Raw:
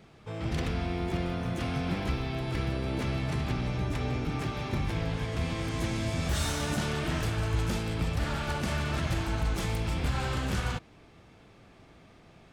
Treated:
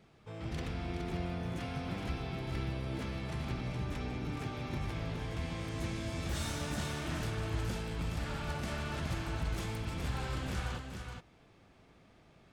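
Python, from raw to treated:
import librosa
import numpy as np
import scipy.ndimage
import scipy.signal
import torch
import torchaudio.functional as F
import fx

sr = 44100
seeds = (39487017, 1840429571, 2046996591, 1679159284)

y = x + 10.0 ** (-6.0 / 20.0) * np.pad(x, (int(419 * sr / 1000.0), 0))[:len(x)]
y = y * librosa.db_to_amplitude(-7.5)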